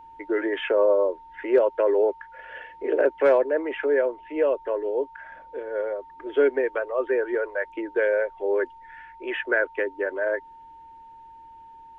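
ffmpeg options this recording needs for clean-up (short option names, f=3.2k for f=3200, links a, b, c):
-af "bandreject=f=910:w=30"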